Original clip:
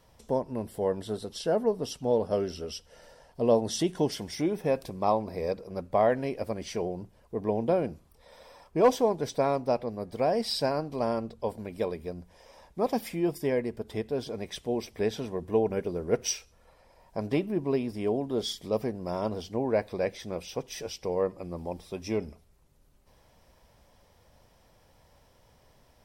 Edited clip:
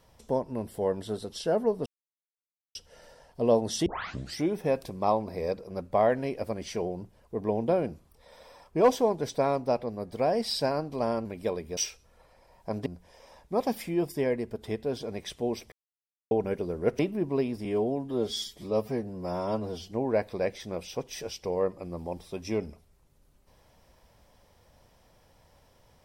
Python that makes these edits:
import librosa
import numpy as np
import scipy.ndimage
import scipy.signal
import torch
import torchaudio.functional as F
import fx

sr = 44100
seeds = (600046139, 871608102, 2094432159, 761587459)

y = fx.edit(x, sr, fx.silence(start_s=1.86, length_s=0.89),
    fx.tape_start(start_s=3.86, length_s=0.52),
    fx.cut(start_s=11.25, length_s=0.35),
    fx.silence(start_s=14.98, length_s=0.59),
    fx.move(start_s=16.25, length_s=1.09, to_s=12.12),
    fx.stretch_span(start_s=18.0, length_s=1.51, factor=1.5), tone=tone)